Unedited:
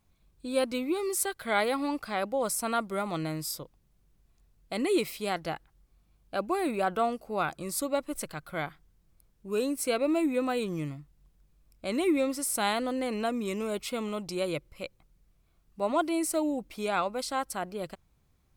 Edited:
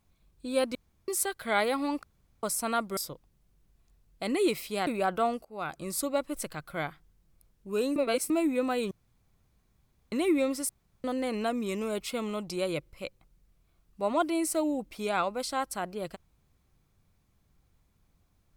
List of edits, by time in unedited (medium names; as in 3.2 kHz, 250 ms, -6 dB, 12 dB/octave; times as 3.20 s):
0.75–1.08 s: room tone
2.03–2.43 s: room tone
2.97–3.47 s: delete
5.37–6.66 s: delete
7.24–7.65 s: fade in, from -19 dB
9.75–10.09 s: reverse
10.70–11.91 s: room tone
12.48–12.83 s: room tone